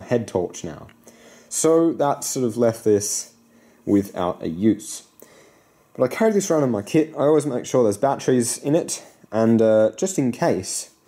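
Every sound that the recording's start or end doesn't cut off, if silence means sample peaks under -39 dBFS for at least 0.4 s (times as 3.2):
3.87–5.41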